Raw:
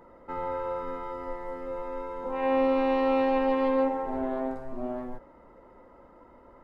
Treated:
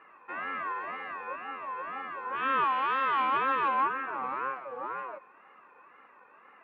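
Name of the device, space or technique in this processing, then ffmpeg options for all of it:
voice changer toy: -filter_complex "[0:a]aeval=exprs='val(0)*sin(2*PI*650*n/s+650*0.25/2*sin(2*PI*2*n/s))':c=same,highpass=480,equalizer=f=680:t=q:w=4:g=-6,equalizer=f=1.1k:t=q:w=4:g=6,equalizer=f=2.5k:t=q:w=4:g=9,lowpass=f=3.7k:w=0.5412,lowpass=f=3.7k:w=1.3066,asettb=1/sr,asplit=3[a][b][c];[a]atrim=end=2.644[d];[b]atrim=start=2.64:end=3.19,asetpts=PTS-STARTPTS,afade=t=in:d=0.004:c=qsin,afade=t=out:st=0.546:d=0.004:c=qsin,lowshelf=f=360:g=-9.5[e];[c]atrim=start=3.186[f];[d][e]acrossfade=d=0.004:c1=hsin:c2=qsin[g];[g][f]acrossfade=d=0.004:c1=qsin:c2=hsin"

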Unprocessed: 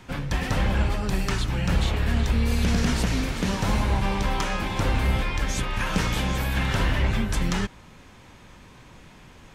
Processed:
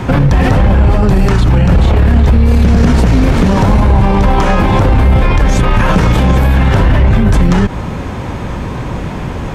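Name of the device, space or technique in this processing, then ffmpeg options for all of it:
mastering chain: -af "highpass=f=52:p=1,equalizer=f=240:t=o:w=2.1:g=-4,acompressor=threshold=-30dB:ratio=2,tiltshelf=f=1.3k:g=9,asoftclip=type=hard:threshold=-15dB,alimiter=level_in=26dB:limit=-1dB:release=50:level=0:latency=1,volume=-1dB"

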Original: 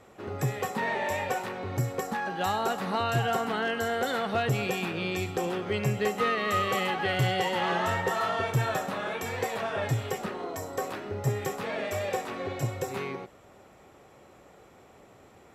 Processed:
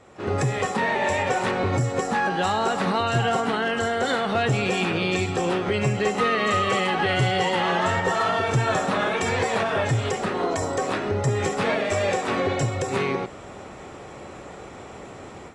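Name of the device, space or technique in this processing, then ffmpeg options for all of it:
low-bitrate web radio: -af "dynaudnorm=f=170:g=3:m=11dB,alimiter=limit=-17dB:level=0:latency=1:release=285,volume=2.5dB" -ar 22050 -c:a aac -b:a 32k

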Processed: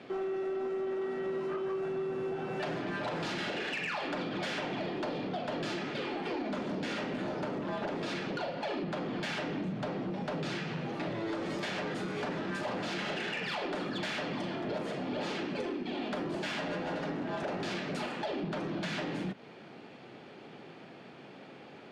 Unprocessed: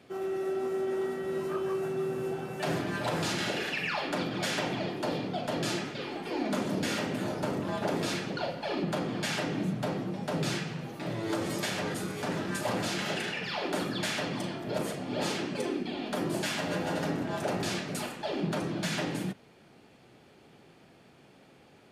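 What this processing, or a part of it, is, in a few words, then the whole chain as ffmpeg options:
AM radio: -af "highpass=160,lowpass=3.9k,acompressor=threshold=-39dB:ratio=6,asoftclip=type=tanh:threshold=-36dB,volume=8dB"

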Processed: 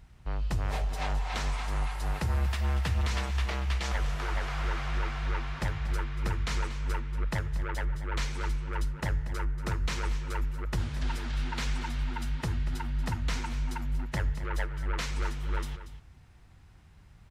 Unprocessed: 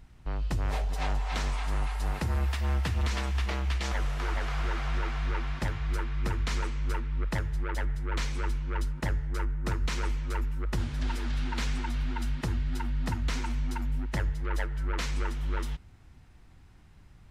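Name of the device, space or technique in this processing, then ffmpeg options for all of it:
low shelf boost with a cut just above: -af "highpass=f=78:p=1,lowshelf=f=77:g=7.5,equalizer=f=280:t=o:w=0.76:g=-5,aecho=1:1:235:0.224"

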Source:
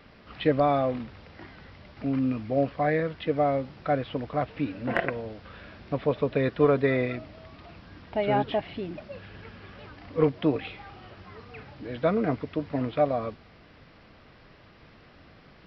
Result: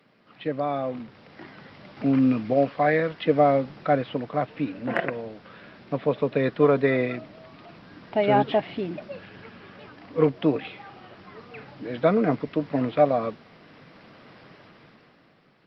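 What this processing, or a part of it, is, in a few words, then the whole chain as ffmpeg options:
video call: -filter_complex "[0:a]asettb=1/sr,asplit=3[a][b][c];[a]atrim=end=2.534[d];[b]atrim=start=2.53:end=3.26,asetpts=PTS-STARTPTS,afade=t=in:d=0.004:c=qsin,afade=t=out:st=0.726:d=0.004:c=qsin,lowshelf=f=450:g=-5.5[e];[c]atrim=start=3.256[f];[d][e]acrossfade=d=0.004:c1=hsin:c2=qsin[g];[g][f]acrossfade=d=0.004:c1=qsin:c2=hsin,highpass=f=130:w=0.5412,highpass=f=130:w=1.3066,dynaudnorm=f=130:g=17:m=16dB,volume=-6dB" -ar 48000 -c:a libopus -b:a 32k

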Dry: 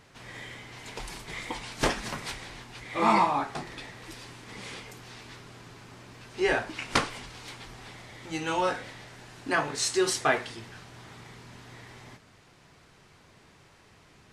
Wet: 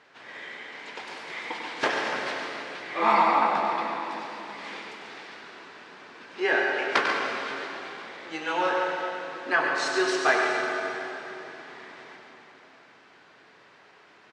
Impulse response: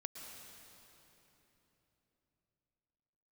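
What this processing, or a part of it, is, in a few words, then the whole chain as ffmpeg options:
station announcement: -filter_complex "[0:a]highpass=360,lowpass=4k,equalizer=f=1.6k:t=o:w=0.36:g=4.5,aecho=1:1:96.21|139.9:0.398|0.355[a];[1:a]atrim=start_sample=2205[b];[a][b]afir=irnorm=-1:irlink=0,volume=5.5dB"

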